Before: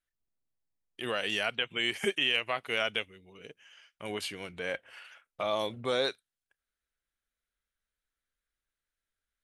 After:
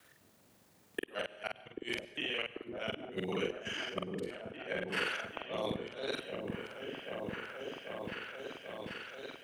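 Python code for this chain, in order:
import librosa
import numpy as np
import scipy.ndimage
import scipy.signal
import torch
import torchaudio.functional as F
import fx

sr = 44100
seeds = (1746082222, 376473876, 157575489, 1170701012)

y = fx.local_reverse(x, sr, ms=41.0)
y = scipy.signal.sosfilt(scipy.signal.butter(4, 91.0, 'highpass', fs=sr, output='sos'), y)
y = fx.peak_eq(y, sr, hz=450.0, db=5.5, octaves=2.5)
y = fx.over_compress(y, sr, threshold_db=-40.0, ratio=-1.0)
y = fx.gate_flip(y, sr, shuts_db=-27.0, range_db=-36)
y = fx.doubler(y, sr, ms=45.0, db=-3)
y = fx.echo_opening(y, sr, ms=788, hz=400, octaves=1, feedback_pct=70, wet_db=-3)
y = fx.rev_plate(y, sr, seeds[0], rt60_s=0.68, hf_ratio=0.8, predelay_ms=85, drr_db=17.0)
y = fx.band_squash(y, sr, depth_pct=40)
y = y * librosa.db_to_amplitude(6.0)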